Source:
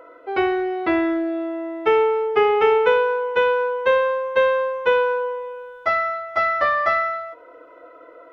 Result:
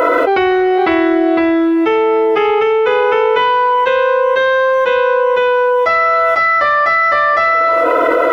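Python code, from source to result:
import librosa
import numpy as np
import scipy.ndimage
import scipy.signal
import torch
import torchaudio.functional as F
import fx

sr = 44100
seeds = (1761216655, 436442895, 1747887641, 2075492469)

y = fx.high_shelf(x, sr, hz=4200.0, db=7.5)
y = y + 10.0 ** (-3.5 / 20.0) * np.pad(y, (int(507 * sr / 1000.0), 0))[:len(y)]
y = fx.env_flatten(y, sr, amount_pct=100)
y = F.gain(torch.from_numpy(y), -1.0).numpy()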